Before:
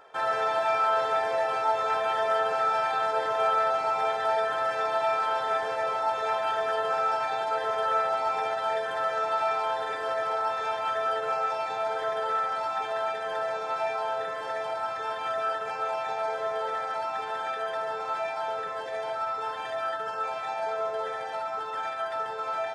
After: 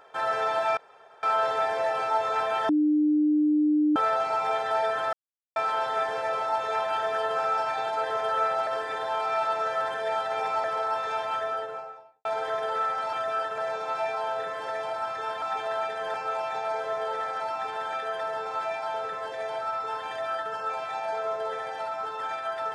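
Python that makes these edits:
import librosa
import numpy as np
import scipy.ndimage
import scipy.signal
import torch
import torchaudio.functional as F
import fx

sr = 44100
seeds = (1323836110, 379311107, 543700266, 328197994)

y = fx.studio_fade_out(x, sr, start_s=10.78, length_s=1.01)
y = fx.edit(y, sr, fx.insert_room_tone(at_s=0.77, length_s=0.46),
    fx.bleep(start_s=2.23, length_s=1.27, hz=301.0, db=-19.0),
    fx.silence(start_s=4.67, length_s=0.43),
    fx.reverse_span(start_s=8.21, length_s=1.97),
    fx.swap(start_s=12.67, length_s=0.72, other_s=15.23, other_length_s=0.45), tone=tone)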